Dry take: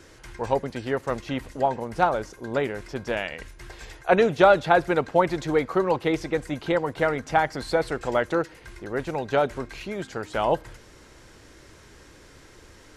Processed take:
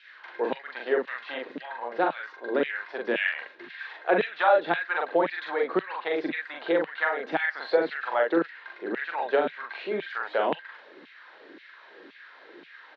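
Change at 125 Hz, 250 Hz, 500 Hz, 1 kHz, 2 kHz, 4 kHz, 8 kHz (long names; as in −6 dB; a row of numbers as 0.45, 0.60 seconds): −17.5 dB, −4.5 dB, −3.5 dB, −4.0 dB, +1.5 dB, −2.5 dB, below −25 dB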